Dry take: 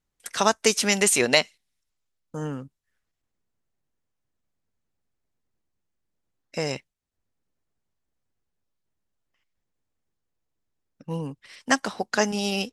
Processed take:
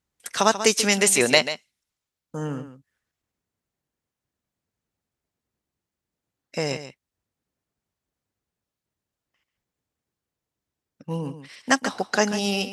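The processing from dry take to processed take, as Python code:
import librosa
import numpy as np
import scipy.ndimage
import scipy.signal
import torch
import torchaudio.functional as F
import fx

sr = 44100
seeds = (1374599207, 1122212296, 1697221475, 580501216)

p1 = scipy.signal.sosfilt(scipy.signal.butter(2, 51.0, 'highpass', fs=sr, output='sos'), x)
p2 = p1 + fx.echo_single(p1, sr, ms=139, db=-11.5, dry=0)
y = p2 * librosa.db_to_amplitude(1.5)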